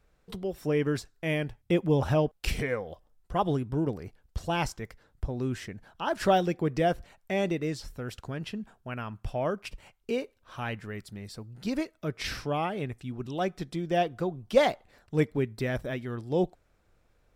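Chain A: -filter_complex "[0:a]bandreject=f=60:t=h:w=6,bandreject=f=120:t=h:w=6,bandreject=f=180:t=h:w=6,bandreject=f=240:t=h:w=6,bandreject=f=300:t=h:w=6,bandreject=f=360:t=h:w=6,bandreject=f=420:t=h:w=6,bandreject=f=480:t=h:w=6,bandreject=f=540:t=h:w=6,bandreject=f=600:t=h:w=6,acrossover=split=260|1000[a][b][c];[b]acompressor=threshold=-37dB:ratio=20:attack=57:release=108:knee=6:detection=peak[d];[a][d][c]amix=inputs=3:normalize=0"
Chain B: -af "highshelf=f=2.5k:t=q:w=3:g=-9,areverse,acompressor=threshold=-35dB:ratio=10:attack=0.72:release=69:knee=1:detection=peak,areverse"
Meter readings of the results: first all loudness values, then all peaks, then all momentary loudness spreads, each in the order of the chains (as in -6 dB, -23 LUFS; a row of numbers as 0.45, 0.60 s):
-34.0, -42.0 LUFS; -15.5, -29.5 dBFS; 12, 5 LU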